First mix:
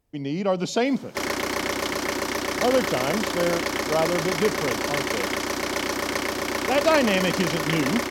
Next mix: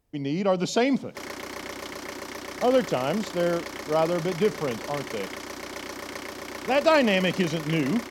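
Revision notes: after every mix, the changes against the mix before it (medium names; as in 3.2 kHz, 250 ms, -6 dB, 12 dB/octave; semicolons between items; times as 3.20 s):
background -10.0 dB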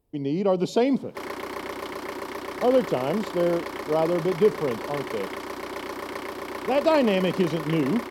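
speech: add peaking EQ 1.5 kHz -9 dB 1.8 oct; master: add fifteen-band graphic EQ 400 Hz +6 dB, 1 kHz +6 dB, 6.3 kHz -8 dB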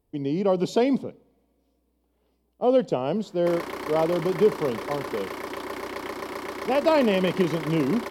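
background: entry +2.30 s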